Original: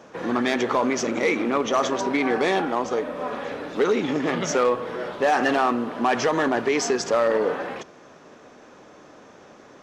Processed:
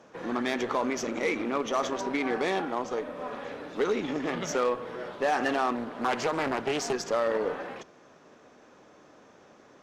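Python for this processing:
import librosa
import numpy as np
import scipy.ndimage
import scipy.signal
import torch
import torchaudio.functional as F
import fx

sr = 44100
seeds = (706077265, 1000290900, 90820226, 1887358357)

y = fx.cheby_harmonics(x, sr, harmonics=(3, 6), levels_db=(-24, -30), full_scale_db=-11.5)
y = fx.doppler_dist(y, sr, depth_ms=0.56, at=(5.75, 6.93))
y = y * 10.0 ** (-5.5 / 20.0)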